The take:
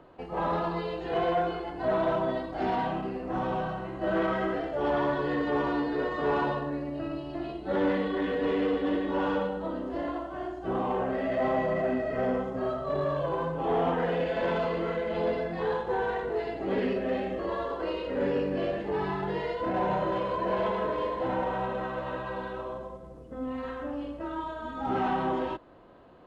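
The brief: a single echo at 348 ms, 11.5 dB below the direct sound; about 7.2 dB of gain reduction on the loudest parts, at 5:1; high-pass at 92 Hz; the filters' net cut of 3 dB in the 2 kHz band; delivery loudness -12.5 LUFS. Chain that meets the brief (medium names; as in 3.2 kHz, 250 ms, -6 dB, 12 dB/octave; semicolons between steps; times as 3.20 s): high-pass 92 Hz; peaking EQ 2 kHz -4 dB; compression 5:1, threshold -32 dBFS; delay 348 ms -11.5 dB; trim +23 dB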